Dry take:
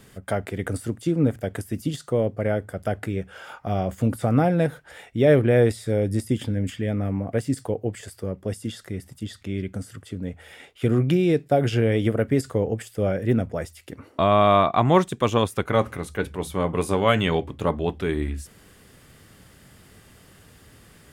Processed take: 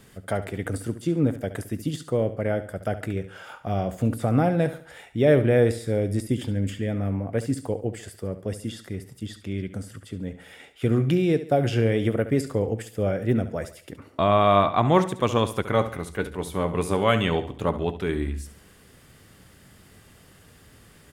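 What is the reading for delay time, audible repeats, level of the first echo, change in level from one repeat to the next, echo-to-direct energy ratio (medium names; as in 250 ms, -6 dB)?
70 ms, 3, -13.0 dB, -8.0 dB, -12.5 dB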